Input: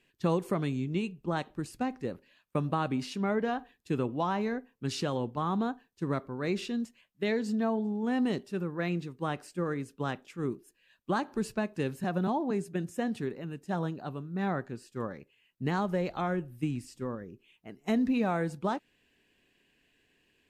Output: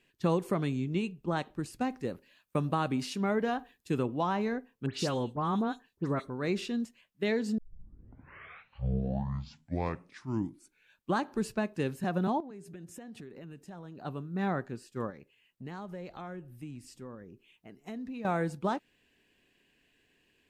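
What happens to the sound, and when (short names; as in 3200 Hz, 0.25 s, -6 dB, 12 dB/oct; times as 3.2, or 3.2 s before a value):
1.8–4.03 high shelf 6100 Hz +6.5 dB
4.86–6.3 dispersion highs, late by 86 ms, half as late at 2800 Hz
7.58 tape start 3.56 s
12.4–14.05 compressor 12:1, threshold -42 dBFS
15.1–18.25 compressor 2:1, threshold -48 dBFS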